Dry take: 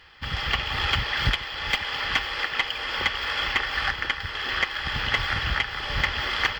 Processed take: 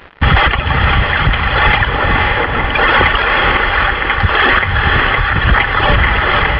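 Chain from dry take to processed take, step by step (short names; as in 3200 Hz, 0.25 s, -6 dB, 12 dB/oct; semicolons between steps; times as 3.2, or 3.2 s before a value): reverb removal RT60 1.1 s; 1.88–2.73 tilt shelf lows +8 dB; in parallel at -1 dB: negative-ratio compressor -31 dBFS; on the sum: crossover distortion -42.5 dBFS; chopper 0.73 Hz, depth 65%, duty 35%; hard clip -20.5 dBFS, distortion -14 dB; Gaussian blur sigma 3.5 samples; on a send: diffused feedback echo 0.527 s, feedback 40%, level -5 dB; on the sum: maximiser +24.5 dB; gain -1 dB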